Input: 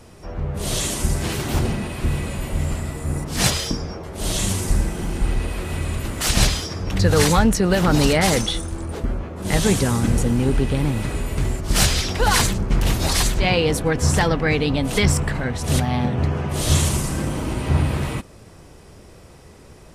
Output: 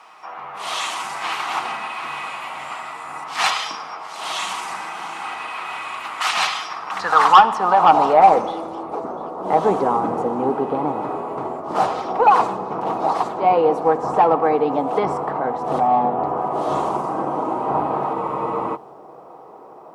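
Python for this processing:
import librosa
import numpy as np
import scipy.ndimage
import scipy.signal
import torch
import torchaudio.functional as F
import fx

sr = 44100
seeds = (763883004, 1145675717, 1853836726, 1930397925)

p1 = scipy.signal.sosfilt(scipy.signal.butter(2, 200.0, 'highpass', fs=sr, output='sos'), x)
p2 = fx.band_shelf(p1, sr, hz=960.0, db=15.0, octaves=1.1)
p3 = fx.rider(p2, sr, range_db=3, speed_s=2.0)
p4 = p2 + (p3 * 10.0 ** (0.5 / 20.0))
p5 = fx.filter_sweep_bandpass(p4, sr, from_hz=2300.0, to_hz=470.0, start_s=6.57, end_s=8.45, q=1.6)
p6 = 10.0 ** (-1.0 / 20.0) * np.tanh(p5 / 10.0 ** (-1.0 / 20.0))
p7 = fx.quant_dither(p6, sr, seeds[0], bits=12, dither='none')
p8 = p7 + fx.echo_wet_highpass(p7, sr, ms=697, feedback_pct=32, hz=4200.0, wet_db=-15.0, dry=0)
p9 = fx.room_shoebox(p8, sr, seeds[1], volume_m3=3600.0, walls='mixed', distance_m=0.57)
p10 = fx.spec_freeze(p9, sr, seeds[2], at_s=18.15, hold_s=0.6)
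y = p10 * 10.0 ** (-2.0 / 20.0)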